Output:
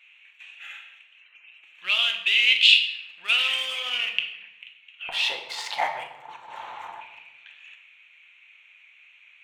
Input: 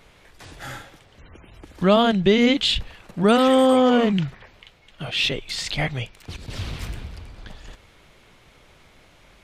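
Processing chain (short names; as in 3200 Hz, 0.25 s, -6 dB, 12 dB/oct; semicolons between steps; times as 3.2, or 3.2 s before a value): Wiener smoothing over 9 samples; resonant high-pass 2600 Hz, resonance Q 9.1, from 5.09 s 880 Hz, from 7.01 s 2500 Hz; shoebox room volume 400 m³, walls mixed, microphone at 0.84 m; gain -4 dB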